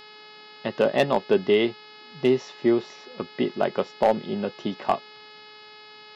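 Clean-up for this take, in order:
clipped peaks rebuilt −10.5 dBFS
hum removal 425 Hz, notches 12

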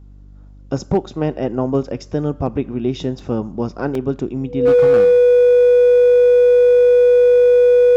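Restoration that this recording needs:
clipped peaks rebuilt −8 dBFS
hum removal 49.2 Hz, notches 6
notch filter 490 Hz, Q 30
repair the gap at 0:03.19/0:03.95, 2.6 ms

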